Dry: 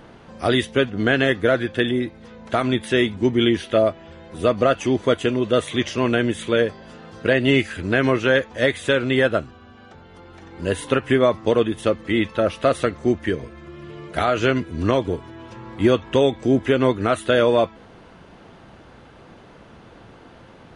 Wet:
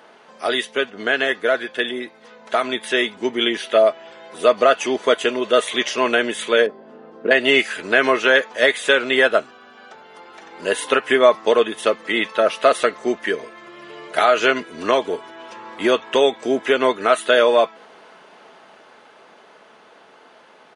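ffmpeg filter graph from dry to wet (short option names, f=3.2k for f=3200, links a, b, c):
-filter_complex "[0:a]asettb=1/sr,asplit=3[a][b][c];[a]atrim=end=6.664[d];[b]atrim=start=6.66:end=7.31,asetpts=PTS-STARTPTS,afade=t=in:d=0.004:c=qsin,afade=t=out:st=0.646:d=0.004:c=qsin,acontrast=52,bandpass=f=270:t=q:w=1.5[e];[c]atrim=start=7.306[f];[d][e]acrossfade=d=0.004:c1=hsin:c2=qsin[g];[g][f]acrossfade=d=0.004:c1=qsin:c2=hsin,highpass=510,aecho=1:1:4.7:0.3,dynaudnorm=f=370:g=17:m=7dB,volume=1dB"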